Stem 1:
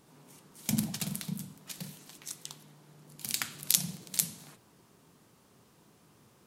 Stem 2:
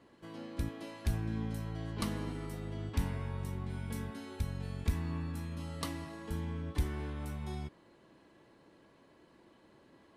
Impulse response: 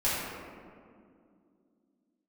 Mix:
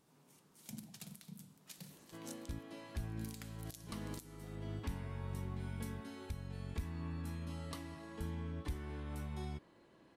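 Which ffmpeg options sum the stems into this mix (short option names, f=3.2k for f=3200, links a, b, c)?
-filter_complex "[0:a]volume=-10.5dB[a];[1:a]adelay=1900,volume=-3dB[b];[a][b]amix=inputs=2:normalize=0,alimiter=level_in=8dB:limit=-24dB:level=0:latency=1:release=491,volume=-8dB"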